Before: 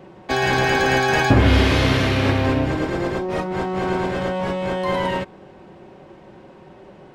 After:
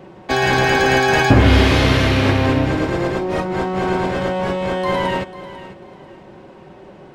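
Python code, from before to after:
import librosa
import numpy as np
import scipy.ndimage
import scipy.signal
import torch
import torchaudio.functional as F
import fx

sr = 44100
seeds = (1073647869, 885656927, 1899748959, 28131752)

y = fx.echo_feedback(x, sr, ms=495, feedback_pct=26, wet_db=-15.5)
y = y * librosa.db_to_amplitude(3.0)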